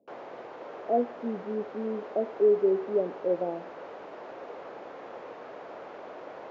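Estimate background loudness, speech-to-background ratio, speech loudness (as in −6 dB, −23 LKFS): −43.0 LKFS, 14.0 dB, −29.0 LKFS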